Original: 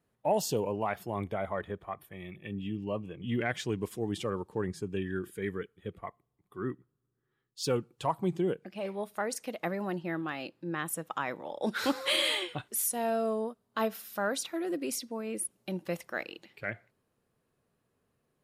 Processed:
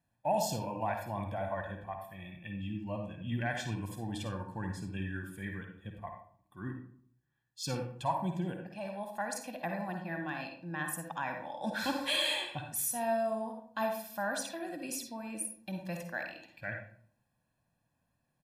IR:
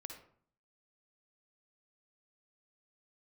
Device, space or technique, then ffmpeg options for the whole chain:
microphone above a desk: -filter_complex "[0:a]aecho=1:1:1.2:0.87[link_01];[1:a]atrim=start_sample=2205[link_02];[link_01][link_02]afir=irnorm=-1:irlink=0"

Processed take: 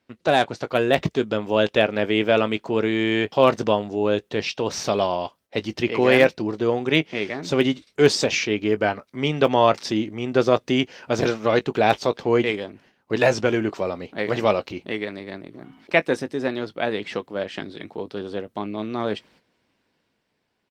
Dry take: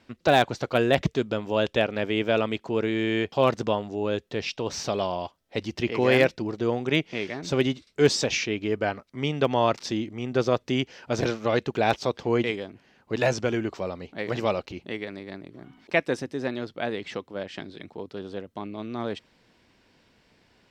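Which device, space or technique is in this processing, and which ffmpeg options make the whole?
video call: -filter_complex "[0:a]highpass=frequency=140:poles=1,asplit=2[link_01][link_02];[link_02]adelay=19,volume=-13.5dB[link_03];[link_01][link_03]amix=inputs=2:normalize=0,dynaudnorm=framelen=170:gausssize=11:maxgain=5.5dB,agate=range=-11dB:threshold=-53dB:ratio=16:detection=peak,volume=1dB" -ar 48000 -c:a libopus -b:a 32k

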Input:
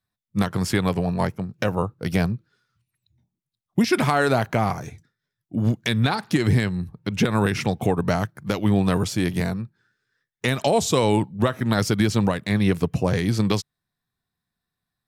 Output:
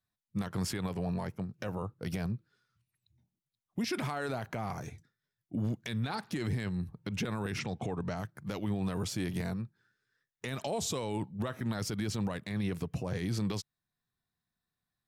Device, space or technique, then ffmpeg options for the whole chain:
stacked limiters: -filter_complex "[0:a]alimiter=limit=-12.5dB:level=0:latency=1:release=482,alimiter=limit=-16.5dB:level=0:latency=1:release=60,alimiter=limit=-20dB:level=0:latency=1:release=14,asettb=1/sr,asplit=3[link_01][link_02][link_03];[link_01]atrim=end=7.594[link_04];[link_02]atrim=start=7.59:end=8.17,asetpts=PTS-STARTPTS,afade=type=in:duration=0.004:curve=qsin,afade=type=out:start_time=0.576:duration=0.004:curve=qsin,lowpass=frequency=7800:width=0.5412,lowpass=frequency=7800:width=1.3066[link_05];[link_03]atrim=start=8.166[link_06];[link_04][link_05]acrossfade=duration=0.004:curve1=hsin:curve2=qsin[link_07];[link_07][link_06]acrossfade=duration=0.004:curve1=qsin:curve2=hsin,volume=-5.5dB"

